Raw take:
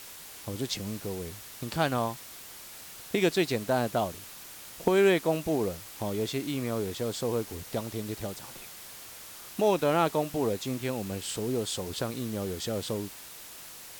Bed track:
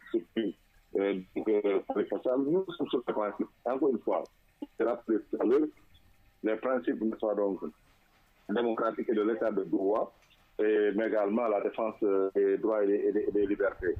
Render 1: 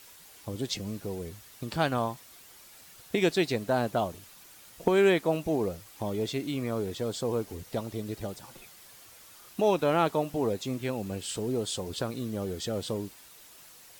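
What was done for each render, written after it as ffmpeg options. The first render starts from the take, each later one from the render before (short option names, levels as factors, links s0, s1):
-af "afftdn=nr=8:nf=-46"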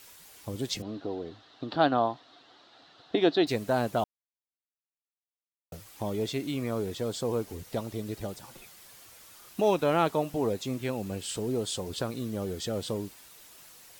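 -filter_complex "[0:a]asettb=1/sr,asplit=3[s0][s1][s2];[s0]atrim=end=0.824[s3];[s1]atrim=start=0.82:end=3.47,asetpts=PTS-STARTPTS,afade=t=in:d=0.004:c=qsin,afade=t=out:st=2.646:d=0.004:c=qsin,highpass=150,equalizer=f=190:t=q:w=4:g=-7,equalizer=f=290:t=q:w=4:g=9,equalizer=f=720:t=q:w=4:g=8,equalizer=f=1300:t=q:w=4:g=3,equalizer=f=2300:t=q:w=4:g=-10,equalizer=f=3900:t=q:w=4:g=7,lowpass=f=4000:w=0.5412,lowpass=f=4000:w=1.3066[s4];[s2]atrim=start=3.466[s5];[s3][s4]acrossfade=d=0.004:c1=hsin:c2=qsin[s6];[s6][s5]acrossfade=d=0.004:c1=qsin:c2=hsin,asettb=1/sr,asplit=3[s7][s8][s9];[s7]atrim=end=8.374[s10];[s8]atrim=start=8.37:end=9.78,asetpts=PTS-STARTPTS,afade=t=in:d=0.004:c=qsin,afade=t=out:st=1.406:d=0.004:c=qsin,acrusher=bits=9:mode=log:mix=0:aa=0.000001[s11];[s9]atrim=start=9.776[s12];[s10][s11]acrossfade=d=0.004:c1=hsin:c2=qsin[s13];[s13][s12]acrossfade=d=0.004:c1=qsin:c2=hsin,asplit=3[s14][s15][s16];[s14]atrim=end=4.04,asetpts=PTS-STARTPTS,afade=t=out:st=4.036:d=0.004:c=hsin[s17];[s15]atrim=start=4.04:end=5.72,asetpts=PTS-STARTPTS,volume=0[s18];[s16]atrim=start=5.72,asetpts=PTS-STARTPTS,afade=t=in:d=0.004:c=hsin[s19];[s17][s18][s19]concat=n=3:v=0:a=1"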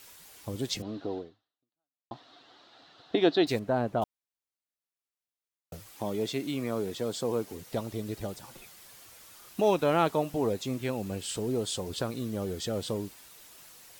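-filter_complex "[0:a]asettb=1/sr,asplit=3[s0][s1][s2];[s0]atrim=end=3.594[s3];[s1]atrim=start=3.59:end=4.02,asetpts=PTS-STARTPTS,afade=t=in:d=0.004:c=qsin,afade=t=out:st=0.426:d=0.004:c=qsin,lowpass=f=1200:p=1[s4];[s2]atrim=start=4.016[s5];[s3][s4]acrossfade=d=0.004:c1=hsin:c2=qsin[s6];[s6][s5]acrossfade=d=0.004:c1=qsin:c2=hsin,asettb=1/sr,asplit=3[s7][s8][s9];[s7]atrim=end=5.944[s10];[s8]atrim=start=5.94:end=7.72,asetpts=PTS-STARTPTS,afade=t=in:d=0.004:c=qsin,afade=t=out:st=1.776:d=0.004:c=qsin,highpass=130[s11];[s9]atrim=start=7.716[s12];[s10][s11]acrossfade=d=0.004:c1=hsin:c2=qsin[s13];[s13][s12]acrossfade=d=0.004:c1=qsin:c2=hsin,asplit=2[s14][s15];[s14]atrim=end=2.11,asetpts=PTS-STARTPTS,afade=t=out:st=1.18:d=0.93:c=exp[s16];[s15]atrim=start=2.11,asetpts=PTS-STARTPTS,afade=t=in:d=0.004:c=hsin[s17];[s16][s17]concat=n=2:v=0:a=1"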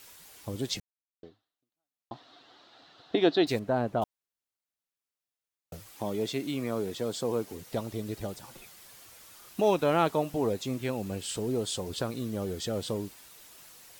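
-filter_complex "[0:a]asplit=3[s0][s1][s2];[s0]atrim=end=0.8,asetpts=PTS-STARTPTS,afade=t=out:st=0.796:d=0.004:c=hsin[s3];[s1]atrim=start=0.8:end=1.23,asetpts=PTS-STARTPTS,volume=0[s4];[s2]atrim=start=1.23,asetpts=PTS-STARTPTS,afade=t=in:d=0.004:c=hsin[s5];[s3][s4][s5]concat=n=3:v=0:a=1"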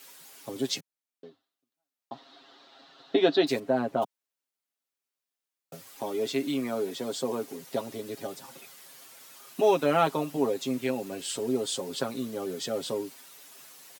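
-af "highpass=f=170:w=0.5412,highpass=f=170:w=1.3066,aecho=1:1:7.4:0.72"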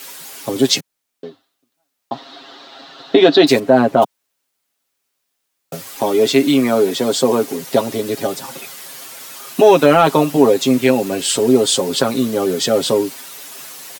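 -af "acontrast=69,alimiter=level_in=2.99:limit=0.891:release=50:level=0:latency=1"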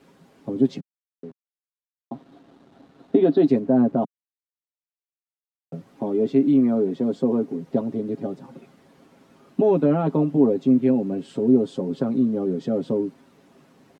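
-af "acrusher=bits=5:mix=0:aa=0.000001,bandpass=f=200:t=q:w=1.5:csg=0"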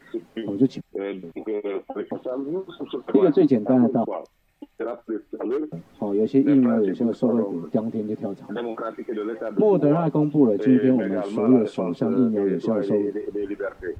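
-filter_complex "[1:a]volume=1[s0];[0:a][s0]amix=inputs=2:normalize=0"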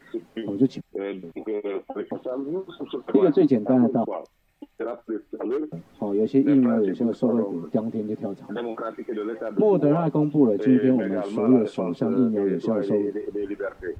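-af "volume=0.891"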